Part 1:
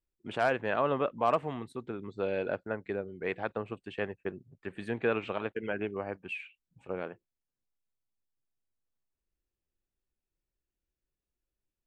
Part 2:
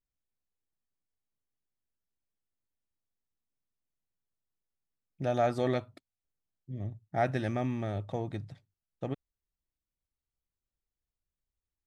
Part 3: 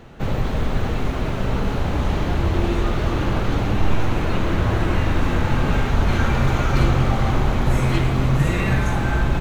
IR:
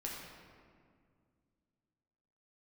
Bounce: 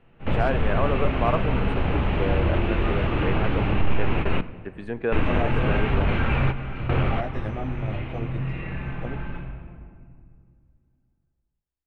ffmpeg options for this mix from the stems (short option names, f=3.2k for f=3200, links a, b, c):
-filter_complex "[0:a]agate=range=-33dB:threshold=-49dB:ratio=3:detection=peak,volume=2.5dB,asplit=3[a][b][c];[b]volume=-14.5dB[d];[1:a]flanger=delay=16.5:depth=2.6:speed=0.21,volume=3dB[e];[2:a]asoftclip=type=tanh:threshold=-6.5dB,lowpass=f=2.7k:t=q:w=3.2,volume=-1.5dB,asplit=3[f][g][h];[f]atrim=end=4.41,asetpts=PTS-STARTPTS,afade=t=out:st=4.406:d=0.004:c=hsin[i];[g]atrim=start=4.41:end=5.12,asetpts=PTS-STARTPTS,volume=0[j];[h]atrim=start=5.12,asetpts=PTS-STARTPTS,afade=t=in:d=0.004:c=hsin[k];[i][j][k]concat=n=3:v=0:a=1,asplit=2[l][m];[m]volume=-13.5dB[n];[c]apad=whole_len=414664[o];[l][o]sidechaingate=range=-27dB:threshold=-47dB:ratio=16:detection=peak[p];[e][p]amix=inputs=2:normalize=0,alimiter=limit=-13.5dB:level=0:latency=1:release=367,volume=0dB[q];[3:a]atrim=start_sample=2205[r];[d][n]amix=inputs=2:normalize=0[s];[s][r]afir=irnorm=-1:irlink=0[t];[a][q][t]amix=inputs=3:normalize=0,highshelf=f=2.7k:g=-10.5"